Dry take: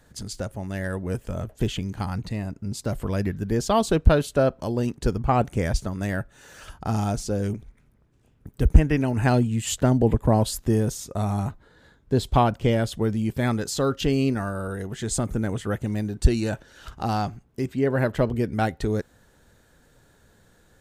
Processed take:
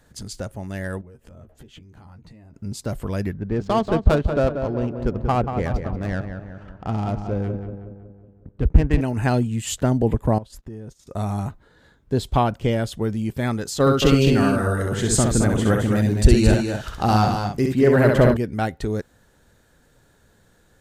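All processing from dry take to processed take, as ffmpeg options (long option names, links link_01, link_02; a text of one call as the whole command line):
ffmpeg -i in.wav -filter_complex "[0:a]asettb=1/sr,asplit=3[link_01][link_02][link_03];[link_01]atrim=end=1.014[link_04];[link_02]atrim=start=1.01:end=2.54,asetpts=PTS-STARTPTS,afade=type=in:duration=0.004:curve=qsin,afade=type=out:start_time=1.526:duration=0.004:curve=qsin,highshelf=frequency=2600:gain=-7.5,acompressor=threshold=-41dB:ratio=16:attack=3.2:release=140:knee=1:detection=peak,asplit=2[link_05][link_06];[link_06]adelay=13,volume=-6dB[link_07];[link_05][link_07]amix=inputs=2:normalize=0,atrim=end_sample=67473[link_08];[link_03]atrim=start=2.536[link_09];[link_04][link_08]acrossfade=duration=0.004:curve1=hsin:curve2=qsin[link_10];[link_10][link_09]acrossfade=duration=0.004:curve1=qsin:curve2=hsin,asettb=1/sr,asplit=3[link_11][link_12][link_13];[link_11]atrim=end=3.334[link_14];[link_12]atrim=start=3.33:end=9.01,asetpts=PTS-STARTPTS,afade=type=in:duration=0.004:curve=qsin,afade=type=out:start_time=5.676:duration=0.004:curve=qsin,adynamicsmooth=sensitivity=3:basefreq=1100,asplit=2[link_15][link_16];[link_16]adelay=185,lowpass=frequency=2100:poles=1,volume=-7dB,asplit=2[link_17][link_18];[link_18]adelay=185,lowpass=frequency=2100:poles=1,volume=0.54,asplit=2[link_19][link_20];[link_20]adelay=185,lowpass=frequency=2100:poles=1,volume=0.54,asplit=2[link_21][link_22];[link_22]adelay=185,lowpass=frequency=2100:poles=1,volume=0.54,asplit=2[link_23][link_24];[link_24]adelay=185,lowpass=frequency=2100:poles=1,volume=0.54,asplit=2[link_25][link_26];[link_26]adelay=185,lowpass=frequency=2100:poles=1,volume=0.54,asplit=2[link_27][link_28];[link_28]adelay=185,lowpass=frequency=2100:poles=1,volume=0.54[link_29];[link_15][link_17][link_19][link_21][link_23][link_25][link_27][link_29]amix=inputs=8:normalize=0,atrim=end_sample=250488[link_30];[link_13]atrim=start=9.006[link_31];[link_14][link_30]acrossfade=duration=0.004:curve1=hsin:curve2=qsin[link_32];[link_32][link_31]acrossfade=duration=0.004:curve1=qsin:curve2=hsin,asettb=1/sr,asplit=3[link_33][link_34][link_35];[link_33]atrim=end=10.384[link_36];[link_34]atrim=start=10.38:end=11.07,asetpts=PTS-STARTPTS,afade=type=in:duration=0.004:curve=qsin,afade=type=out:start_time=0.686:duration=0.004:curve=qsin,lowpass=frequency=2500:poles=1,acompressor=threshold=-37dB:ratio=3:attack=3.2:release=140:knee=1:detection=peak,agate=range=-16dB:threshold=-44dB:ratio=16:release=100:detection=peak[link_37];[link_35]atrim=start=11.066[link_38];[link_36][link_37]acrossfade=duration=0.004:curve1=hsin:curve2=qsin[link_39];[link_39][link_38]acrossfade=duration=0.004:curve1=qsin:curve2=hsin,asettb=1/sr,asplit=3[link_40][link_41][link_42];[link_40]atrim=end=13.804[link_43];[link_41]atrim=start=13.8:end=18.37,asetpts=PTS-STARTPTS,afade=type=in:duration=0.004:curve=qsin,afade=type=out:start_time=4.566:duration=0.004:curve=qsin,acontrast=56,aecho=1:1:65|219|268:0.631|0.501|0.299,atrim=end_sample=201537[link_44];[link_42]atrim=start=18.366[link_45];[link_43][link_44]acrossfade=duration=0.004:curve1=hsin:curve2=qsin[link_46];[link_46][link_45]acrossfade=duration=0.004:curve1=qsin:curve2=hsin" out.wav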